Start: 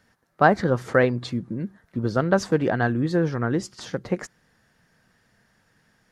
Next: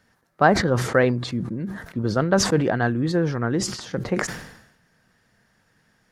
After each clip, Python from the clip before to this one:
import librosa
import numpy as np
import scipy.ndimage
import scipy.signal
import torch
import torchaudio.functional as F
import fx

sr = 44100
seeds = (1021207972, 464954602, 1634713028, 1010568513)

y = fx.sustainer(x, sr, db_per_s=68.0)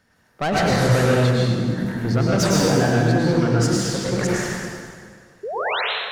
y = 10.0 ** (-18.5 / 20.0) * np.tanh(x / 10.0 ** (-18.5 / 20.0))
y = fx.spec_paint(y, sr, seeds[0], shape='rise', start_s=5.43, length_s=0.38, low_hz=380.0, high_hz=4300.0, level_db=-28.0)
y = fx.rev_plate(y, sr, seeds[1], rt60_s=1.9, hf_ratio=0.85, predelay_ms=90, drr_db=-5.0)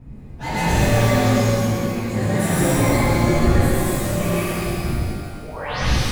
y = fx.partial_stretch(x, sr, pct=116)
y = fx.dmg_wind(y, sr, seeds[2], corner_hz=110.0, level_db=-26.0)
y = fx.rev_shimmer(y, sr, seeds[3], rt60_s=1.7, semitones=12, shimmer_db=-8, drr_db=-8.0)
y = F.gain(torch.from_numpy(y), -6.5).numpy()